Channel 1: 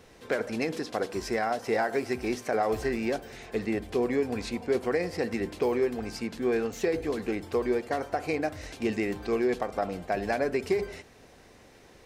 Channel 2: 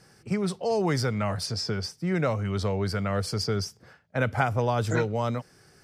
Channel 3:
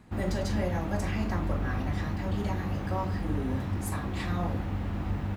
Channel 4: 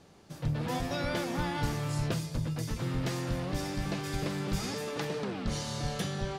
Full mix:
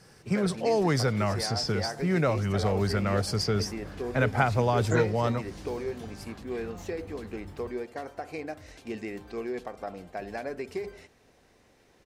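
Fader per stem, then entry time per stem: -7.5, +0.5, -14.5, -16.0 dB; 0.05, 0.00, 2.35, 0.00 s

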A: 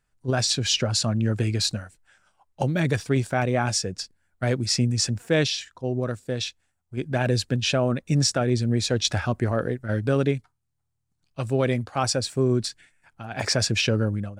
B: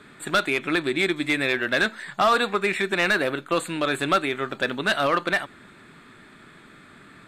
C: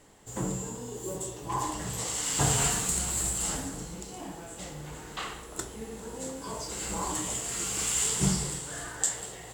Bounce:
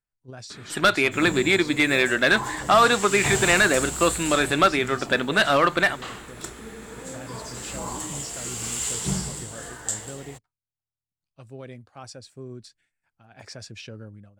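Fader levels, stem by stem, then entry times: -17.5, +3.0, -0.5 dB; 0.00, 0.50, 0.85 s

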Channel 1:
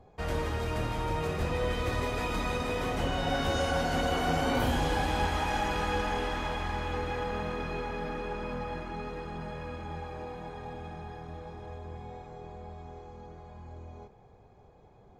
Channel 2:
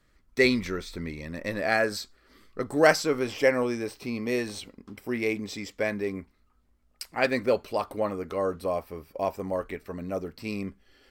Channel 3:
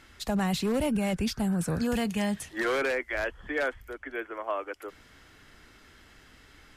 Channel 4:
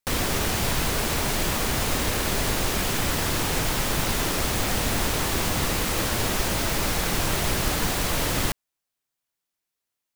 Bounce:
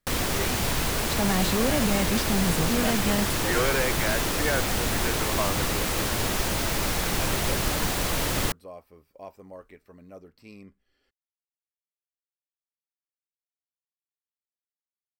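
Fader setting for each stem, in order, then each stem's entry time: off, -14.0 dB, +1.5 dB, -1.5 dB; off, 0.00 s, 0.90 s, 0.00 s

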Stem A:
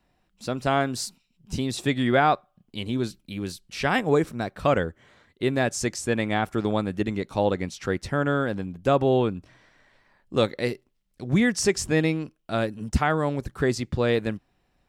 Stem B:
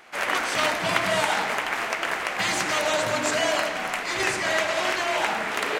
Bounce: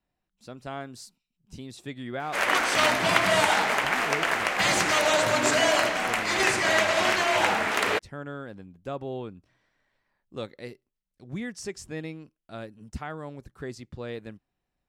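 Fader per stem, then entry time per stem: -13.5, +1.5 dB; 0.00, 2.20 s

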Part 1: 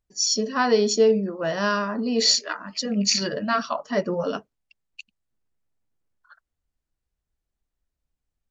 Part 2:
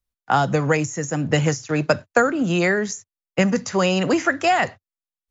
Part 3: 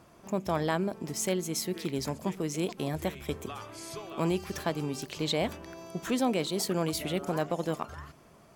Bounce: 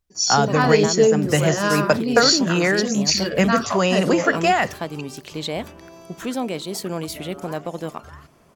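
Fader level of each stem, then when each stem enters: +2.0, 0.0, +2.0 dB; 0.00, 0.00, 0.15 s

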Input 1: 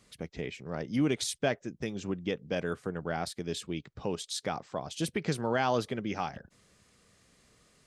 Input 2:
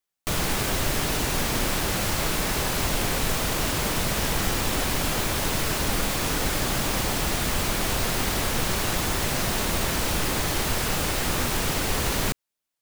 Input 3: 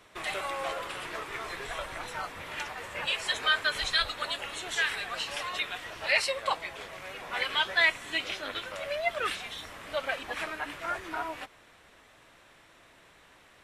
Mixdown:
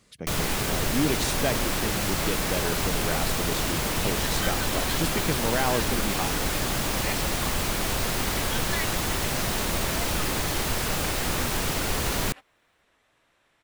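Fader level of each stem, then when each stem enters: +2.0, -1.5, -10.0 dB; 0.00, 0.00, 0.95 s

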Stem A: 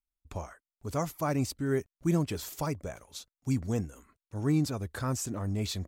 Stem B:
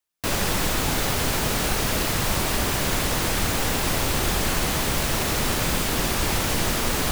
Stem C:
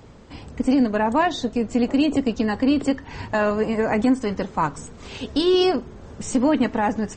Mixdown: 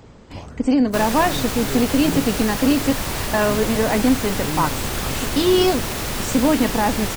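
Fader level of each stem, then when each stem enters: -1.5, -2.0, +1.5 dB; 0.00, 0.70, 0.00 s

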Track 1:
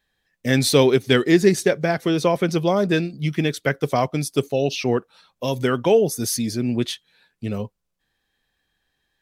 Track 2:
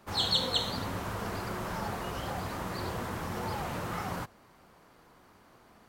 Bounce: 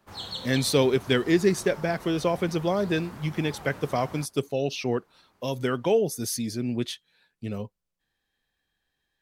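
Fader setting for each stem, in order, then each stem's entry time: -6.0, -8.0 dB; 0.00, 0.00 s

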